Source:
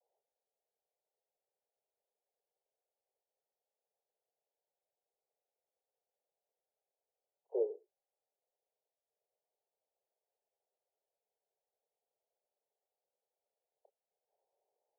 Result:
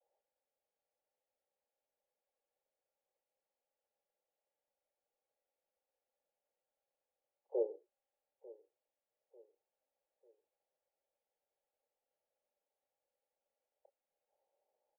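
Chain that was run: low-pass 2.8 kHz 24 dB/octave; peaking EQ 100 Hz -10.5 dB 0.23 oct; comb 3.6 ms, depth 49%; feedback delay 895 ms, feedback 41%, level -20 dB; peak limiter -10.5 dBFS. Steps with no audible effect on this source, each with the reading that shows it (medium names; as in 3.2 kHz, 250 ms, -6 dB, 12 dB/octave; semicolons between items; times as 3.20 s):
low-pass 2.8 kHz: input has nothing above 760 Hz; peaking EQ 100 Hz: input has nothing below 320 Hz; peak limiter -10.5 dBFS: peak at its input -24.5 dBFS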